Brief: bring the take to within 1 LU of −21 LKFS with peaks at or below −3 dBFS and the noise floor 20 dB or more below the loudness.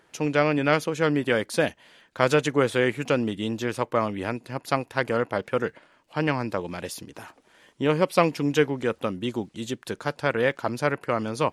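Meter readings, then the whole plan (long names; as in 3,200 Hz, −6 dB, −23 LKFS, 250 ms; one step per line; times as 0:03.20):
crackle rate 16 per second; integrated loudness −25.5 LKFS; sample peak −3.5 dBFS; target loudness −21.0 LKFS
→ click removal
level +4.5 dB
brickwall limiter −3 dBFS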